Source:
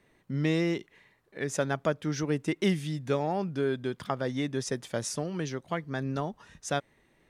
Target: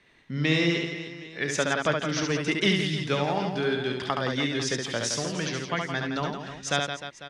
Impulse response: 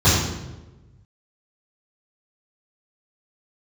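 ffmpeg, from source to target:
-filter_complex "[0:a]lowpass=8.5k,acrossover=split=670|4400[a][b][c];[b]crystalizer=i=8:c=0[d];[a][d][c]amix=inputs=3:normalize=0,aecho=1:1:70|168|305.2|497.3|766.2:0.631|0.398|0.251|0.158|0.1"

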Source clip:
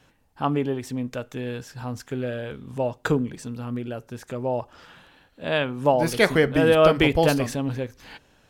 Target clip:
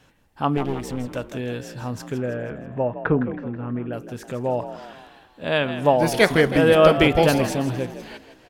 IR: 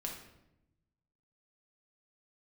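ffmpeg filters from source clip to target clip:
-filter_complex "[0:a]asettb=1/sr,asplit=3[a][b][c];[a]atrim=end=0.574[d];[b]atrim=start=0.57:end=1.16,asetpts=PTS-STARTPTS,afade=t=in:d=0.004:c=qsin,afade=t=out:st=0.586:d=0.004:c=qsin,aeval=exprs='clip(val(0),-1,0.0158)':c=same[e];[c]atrim=start=1.156[f];[d][e]acrossfade=d=0.004:c1=hsin:c2=qsin[g];[g][f]acrossfade=d=0.004:c1=qsin:c2=hsin,asettb=1/sr,asplit=3[h][i][j];[h]atrim=end=2.184[k];[i]atrim=start=2.18:end=3.93,asetpts=PTS-STARTPTS,afade=t=in:d=0.004:c=qsin,afade=t=out:st=1.746:d=0.004:c=qsin,lowpass=f=2.2k:w=0.5412,lowpass=f=2.2k:w=1.3066[l];[j]atrim=start=3.926[m];[k][l]acrossfade=d=0.004:c1=hsin:c2=qsin[n];[n][m]acrossfade=d=0.004:c1=qsin:c2=hsin,asplit=6[o][p][q][r][s][t];[p]adelay=161,afreqshift=48,volume=-11.5dB[u];[q]adelay=322,afreqshift=96,volume=-17.9dB[v];[r]adelay=483,afreqshift=144,volume=-24.3dB[w];[s]adelay=644,afreqshift=192,volume=-30.6dB[x];[t]adelay=805,afreqshift=240,volume=-37dB[y];[o][u][v][w][x][y]amix=inputs=6:normalize=0,volume=2dB"

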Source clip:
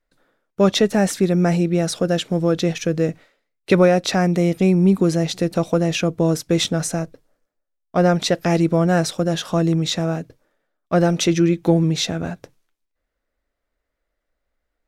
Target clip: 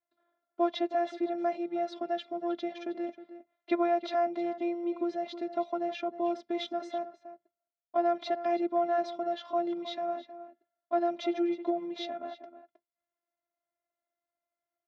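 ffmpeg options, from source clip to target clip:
-filter_complex "[0:a]afftfilt=real='hypot(re,im)*cos(PI*b)':imag='0':win_size=512:overlap=0.75,highpass=260,equalizer=f=440:t=q:w=4:g=-5,equalizer=f=630:t=q:w=4:g=7,equalizer=f=900:t=q:w=4:g=3,equalizer=f=1.6k:t=q:w=4:g=-5,equalizer=f=2.7k:t=q:w=4:g=-8,lowpass=f=3.5k:w=0.5412,lowpass=f=3.5k:w=1.3066,asplit=2[a][b];[b]adelay=314.9,volume=-13dB,highshelf=f=4k:g=-7.08[c];[a][c]amix=inputs=2:normalize=0,volume=-8dB"

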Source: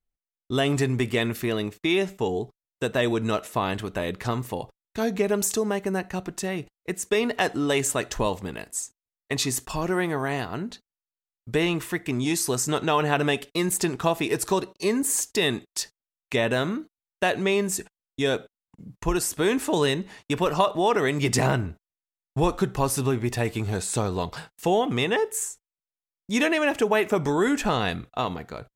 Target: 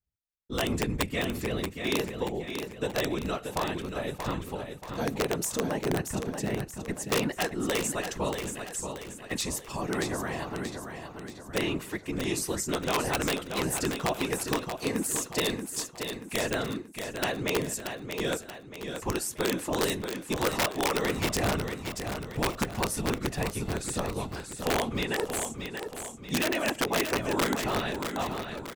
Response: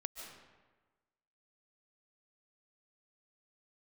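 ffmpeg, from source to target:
-filter_complex "[0:a]asettb=1/sr,asplit=3[a][b][c];[a]atrim=end=5.834[d];[b]atrim=start=5.83:end=7.18,asetpts=PTS-STARTPTS,afade=t=in:d=0.004:c=qsin,afade=t=out:st=1.346:d=0.004:c=qsin,lowshelf=f=180:g=12[e];[c]atrim=start=7.176[f];[d][e]acrossfade=d=0.004:c1=hsin:c2=qsin[g];[g][f]acrossfade=d=0.004:c1=qsin:c2=hsin,afftfilt=real='hypot(re,im)*cos(2*PI*random(0))':imag='hypot(re,im)*sin(2*PI*random(1))':win_size=512:overlap=0.75,aeval=exprs='(mod(8.91*val(0)+1,2)-1)/8.91':c=same,aecho=1:1:631|1262|1893|2524|3155:0.447|0.201|0.0905|0.0407|0.0183"

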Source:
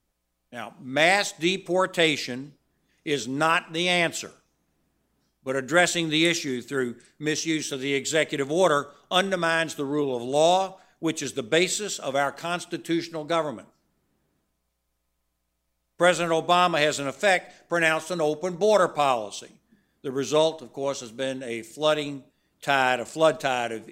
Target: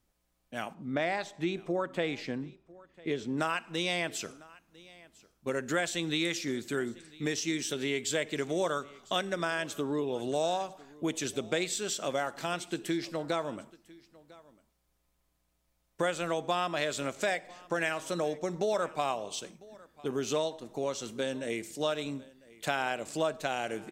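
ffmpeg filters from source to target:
-filter_complex "[0:a]asplit=3[a][b][c];[a]afade=t=out:st=0.73:d=0.02[d];[b]lowpass=f=1.4k:p=1,afade=t=in:st=0.73:d=0.02,afade=t=out:st=3.37:d=0.02[e];[c]afade=t=in:st=3.37:d=0.02[f];[d][e][f]amix=inputs=3:normalize=0,acompressor=threshold=-30dB:ratio=3,aecho=1:1:1000:0.075"

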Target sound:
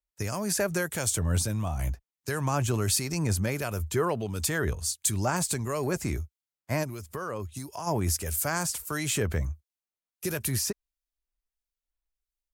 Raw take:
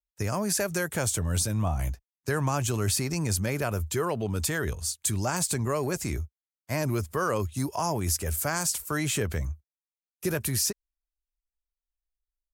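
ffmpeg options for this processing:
-filter_complex "[0:a]asplit=3[a][b][c];[a]afade=t=out:st=6.83:d=0.02[d];[b]acompressor=threshold=-32dB:ratio=6,afade=t=in:st=6.83:d=0.02,afade=t=out:st=7.86:d=0.02[e];[c]afade=t=in:st=7.86:d=0.02[f];[d][e][f]amix=inputs=3:normalize=0,acrossover=split=2300[g][h];[g]aeval=exprs='val(0)*(1-0.5/2+0.5/2*cos(2*PI*1.5*n/s))':c=same[i];[h]aeval=exprs='val(0)*(1-0.5/2-0.5/2*cos(2*PI*1.5*n/s))':c=same[j];[i][j]amix=inputs=2:normalize=0,volume=2dB"

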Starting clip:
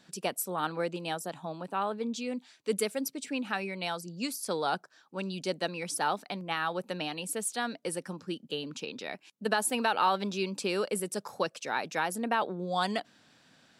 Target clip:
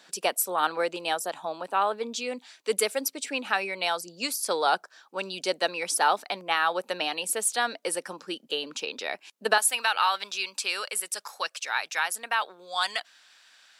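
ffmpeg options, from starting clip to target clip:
-af "asetnsamples=n=441:p=0,asendcmd='9.58 highpass f 1300',highpass=490,volume=7.5dB"

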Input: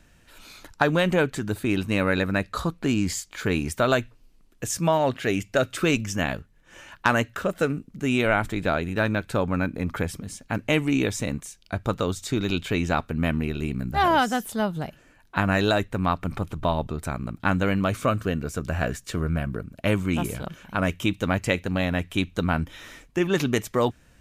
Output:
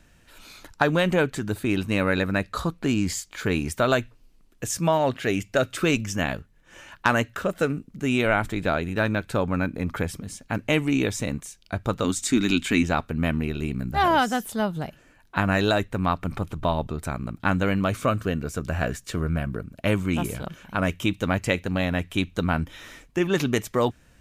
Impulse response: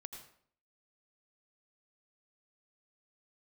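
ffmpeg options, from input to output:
-filter_complex "[0:a]asettb=1/sr,asplit=3[a][b][c];[a]atrim=end=12.044[d];[b]atrim=start=12.04:end=12.83,asetpts=PTS-STARTPTS,afade=t=in:d=0.004:c=qsin,afade=t=out:st=0.786:d=0.004:c=qsin,equalizer=f=125:t=o:w=1:g=-10,equalizer=f=250:t=o:w=1:g=12,equalizer=f=500:t=o:w=1:g=-8,equalizer=f=2k:t=o:w=1:g=6,equalizer=f=8k:t=o:w=1:g=10[e];[c]atrim=start=12.826[f];[d][e]acrossfade=d=0.004:c1=hsin:c2=qsin[g];[g][f]acrossfade=d=0.004:c1=qsin:c2=hsin"

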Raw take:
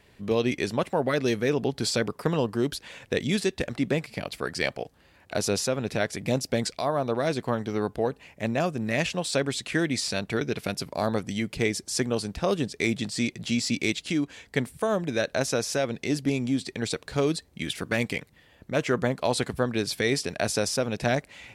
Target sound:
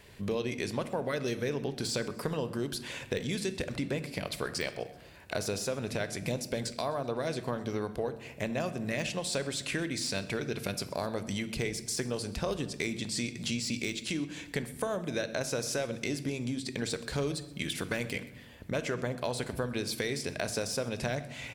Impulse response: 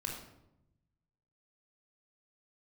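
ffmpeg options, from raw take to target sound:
-filter_complex "[0:a]deesser=0.6,highshelf=f=4.8k:g=5.5,acompressor=threshold=-34dB:ratio=4,aecho=1:1:127|254|381|508:0.0794|0.0421|0.0223|0.0118,asplit=2[a][b];[1:a]atrim=start_sample=2205[c];[b][c]afir=irnorm=-1:irlink=0,volume=-7dB[d];[a][d]amix=inputs=2:normalize=0"

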